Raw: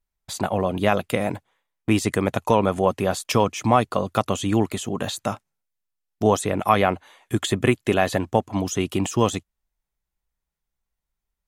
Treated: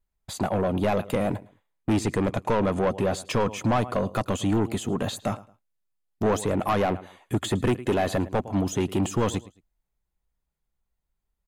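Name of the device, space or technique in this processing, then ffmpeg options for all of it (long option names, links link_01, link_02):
saturation between pre-emphasis and de-emphasis: -filter_complex "[0:a]asettb=1/sr,asplit=3[link_01][link_02][link_03];[link_01]atrim=end=1.934[link_04];[link_02]atrim=start=1.93:end=3.46,asetpts=PTS-STARTPTS,afade=type=in:duration=0.004:curve=qsin,afade=type=out:start_time=1.526:duration=0.004:curve=qsin,lowpass=9800[link_05];[link_03]atrim=start=3.456[link_06];[link_04][link_05]acrossfade=duration=0.004:curve1=hsin:curve2=qsin[link_07];[link_07][link_06]acrossfade=duration=0.004:curve1=qsin:curve2=hsin,tiltshelf=frequency=970:gain=3.5,highshelf=frequency=3300:gain=10.5,bandreject=frequency=5600:width=10,aecho=1:1:109|218:0.075|0.0187,asoftclip=type=tanh:threshold=-17.5dB,highshelf=frequency=3300:gain=-10.5"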